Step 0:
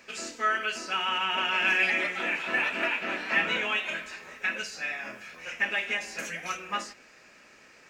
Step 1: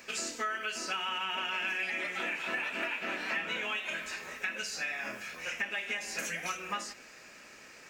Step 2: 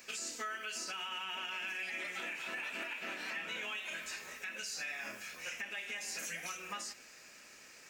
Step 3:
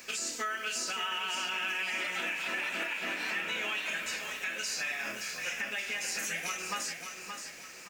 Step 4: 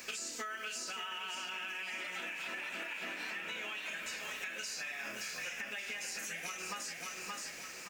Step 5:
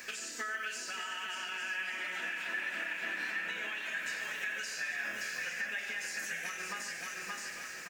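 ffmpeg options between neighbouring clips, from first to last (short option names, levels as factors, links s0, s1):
-af "highshelf=f=7100:g=8.5,acompressor=threshold=0.02:ratio=5,volume=1.19"
-af "highshelf=f=3800:g=9.5,alimiter=level_in=1.06:limit=0.0631:level=0:latency=1:release=58,volume=0.944,volume=0.447"
-filter_complex "[0:a]acrusher=bits=10:mix=0:aa=0.000001,asplit=2[s0][s1];[s1]aecho=0:1:574|1148|1722|2296:0.447|0.17|0.0645|0.0245[s2];[s0][s2]amix=inputs=2:normalize=0,volume=2"
-af "acompressor=threshold=0.0112:ratio=10,volume=1.12"
-af "equalizer=f=1700:t=o:w=0.37:g=10.5,aecho=1:1:91|145|850:0.282|0.266|0.299,volume=0.841"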